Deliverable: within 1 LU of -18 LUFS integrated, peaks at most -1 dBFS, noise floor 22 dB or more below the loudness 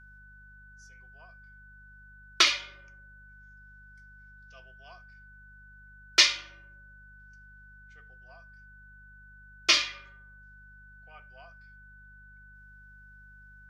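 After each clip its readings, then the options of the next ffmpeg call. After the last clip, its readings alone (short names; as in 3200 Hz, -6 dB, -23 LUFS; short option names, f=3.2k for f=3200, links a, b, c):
hum 50 Hz; harmonics up to 200 Hz; hum level -53 dBFS; steady tone 1500 Hz; tone level -52 dBFS; loudness -24.0 LUFS; peak -4.5 dBFS; loudness target -18.0 LUFS
-> -af "bandreject=f=50:t=h:w=4,bandreject=f=100:t=h:w=4,bandreject=f=150:t=h:w=4,bandreject=f=200:t=h:w=4"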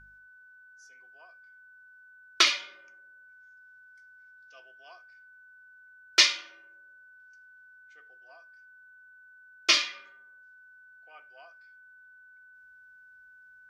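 hum none; steady tone 1500 Hz; tone level -52 dBFS
-> -af "bandreject=f=1.5k:w=30"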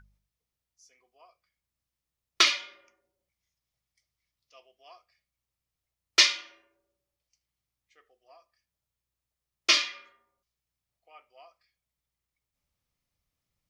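steady tone none; loudness -24.0 LUFS; peak -5.0 dBFS; loudness target -18.0 LUFS
-> -af "volume=6dB,alimiter=limit=-1dB:level=0:latency=1"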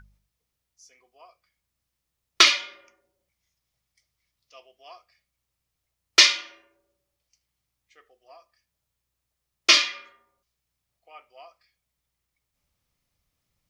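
loudness -18.5 LUFS; peak -1.0 dBFS; noise floor -82 dBFS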